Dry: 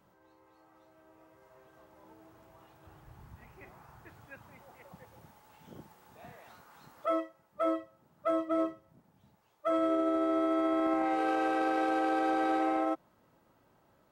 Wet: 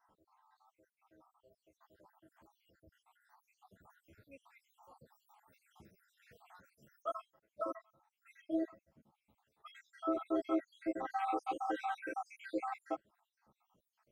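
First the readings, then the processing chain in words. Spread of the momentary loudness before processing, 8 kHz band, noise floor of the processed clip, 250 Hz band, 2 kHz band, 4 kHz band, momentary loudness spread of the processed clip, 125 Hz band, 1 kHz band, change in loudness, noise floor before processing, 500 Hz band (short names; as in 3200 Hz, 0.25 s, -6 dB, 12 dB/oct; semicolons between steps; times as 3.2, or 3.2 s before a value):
8 LU, n/a, under -85 dBFS, -9.0 dB, -10.0 dB, -9.5 dB, 9 LU, -12.5 dB, -8.5 dB, -9.0 dB, -68 dBFS, -10.5 dB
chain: random spectral dropouts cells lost 76%; ensemble effect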